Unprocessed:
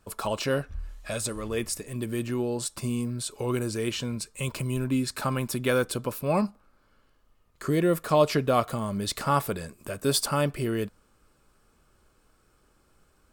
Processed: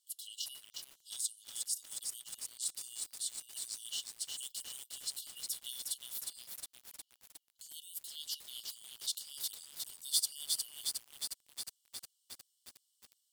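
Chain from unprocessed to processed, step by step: brick-wall FIR high-pass 2800 Hz; high shelf 5600 Hz +4.5 dB; lo-fi delay 0.36 s, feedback 80%, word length 7-bit, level -3 dB; gain -7 dB

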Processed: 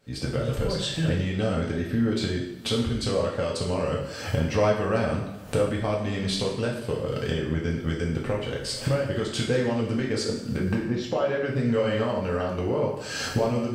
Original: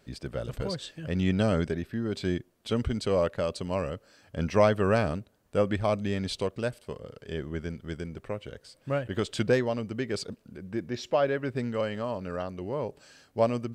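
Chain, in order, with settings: recorder AGC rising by 60 dB/s; 10.77–11.2 high shelf 2800 Hz -10 dB; two-slope reverb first 0.7 s, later 2.3 s, DRR -3 dB; gain -5 dB

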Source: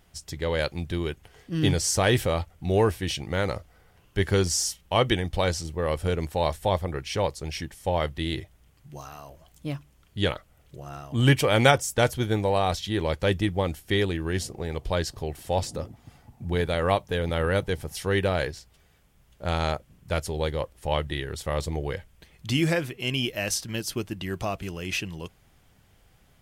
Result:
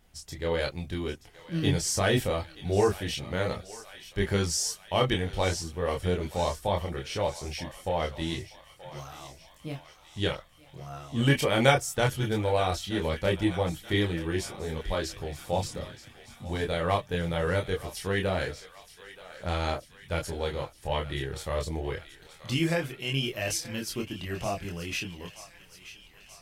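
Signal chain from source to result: thinning echo 0.928 s, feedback 69%, high-pass 910 Hz, level -14 dB; chorus voices 6, 0.15 Hz, delay 26 ms, depth 4.5 ms

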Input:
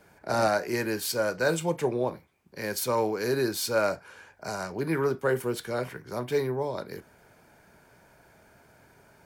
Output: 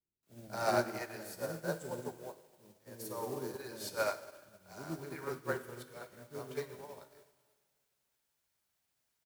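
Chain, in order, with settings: 1–3.35 bell 2600 Hz -14.5 dB 1.4 oct; added noise white -46 dBFS; bands offset in time lows, highs 0.23 s, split 400 Hz; plate-style reverb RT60 2.7 s, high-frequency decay 0.8×, DRR 3.5 dB; upward expander 2.5:1, over -45 dBFS; gain -4 dB

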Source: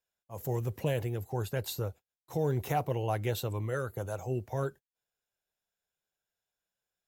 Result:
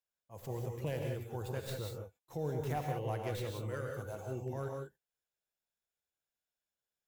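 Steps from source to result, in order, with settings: tracing distortion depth 0.12 ms; non-linear reverb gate 0.21 s rising, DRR 1.5 dB; gain -8 dB

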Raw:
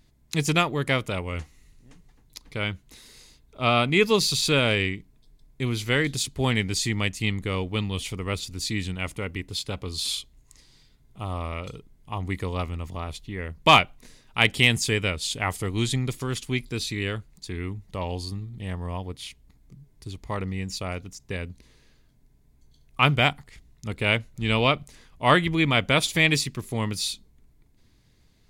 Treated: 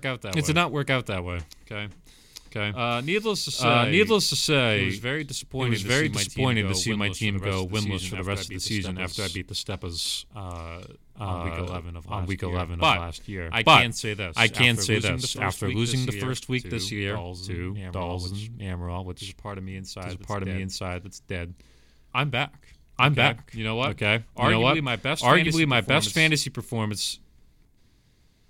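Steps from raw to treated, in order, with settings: reverse echo 0.847 s -5 dB

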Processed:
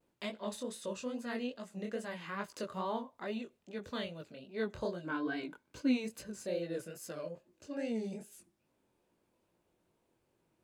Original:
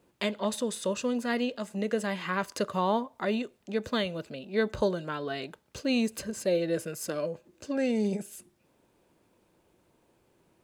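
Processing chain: 5.03–6.04 small resonant body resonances 290/990/1500/2200 Hz, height 15 dB -> 11 dB; vibrato 0.44 Hz 23 cents; chorus 2.4 Hz, delay 17 ms, depth 7.5 ms; gain -7 dB

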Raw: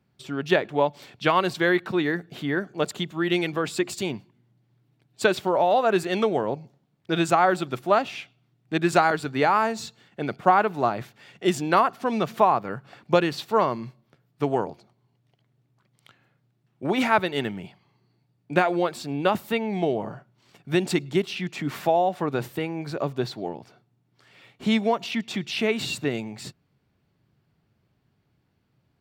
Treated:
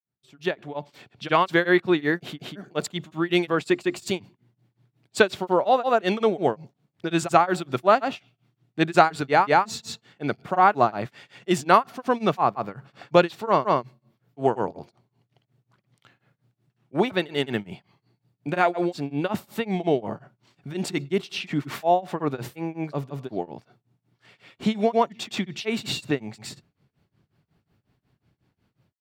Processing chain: opening faded in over 1.38 s; grains 0.209 s, grains 5.5/s, pitch spread up and down by 0 st; gain +4 dB

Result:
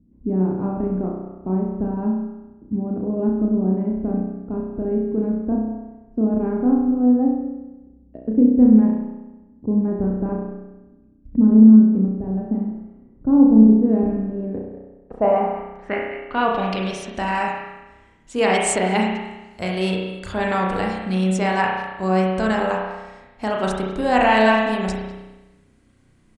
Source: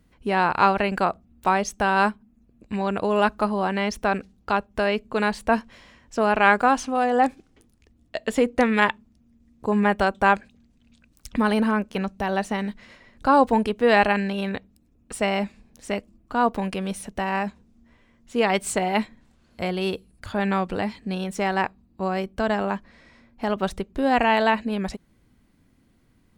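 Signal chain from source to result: speakerphone echo 0.2 s, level -14 dB; low-pass sweep 270 Hz -> 8300 Hz, 14.28–17.3; spring tank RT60 1.1 s, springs 32 ms, chirp 75 ms, DRR -1.5 dB

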